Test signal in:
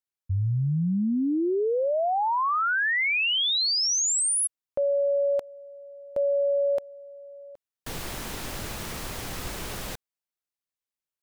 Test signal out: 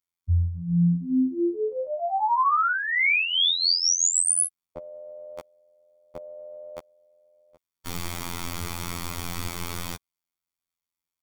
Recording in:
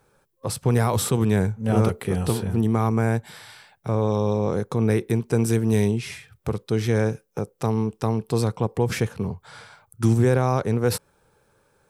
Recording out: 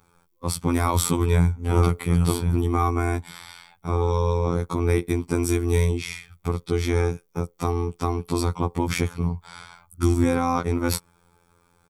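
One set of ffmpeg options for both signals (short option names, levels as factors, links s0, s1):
-af "afftfilt=real='hypot(re,im)*cos(PI*b)':imag='0':win_size=2048:overlap=0.75,aecho=1:1:0.9:0.49,volume=1.58"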